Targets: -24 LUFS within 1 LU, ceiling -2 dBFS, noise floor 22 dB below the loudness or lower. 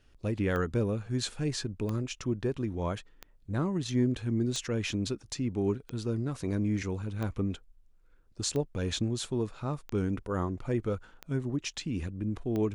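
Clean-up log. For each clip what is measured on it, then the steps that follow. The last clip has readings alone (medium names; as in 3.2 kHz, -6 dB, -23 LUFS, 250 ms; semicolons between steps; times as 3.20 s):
clicks found 10; loudness -32.5 LUFS; peak level -17.0 dBFS; loudness target -24.0 LUFS
-> de-click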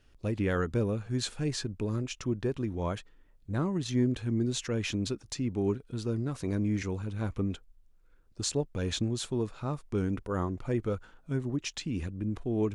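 clicks found 0; loudness -32.5 LUFS; peak level -17.0 dBFS; loudness target -24.0 LUFS
-> trim +8.5 dB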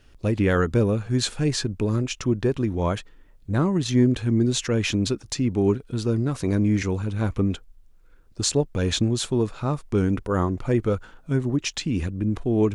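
loudness -24.0 LUFS; peak level -8.5 dBFS; noise floor -53 dBFS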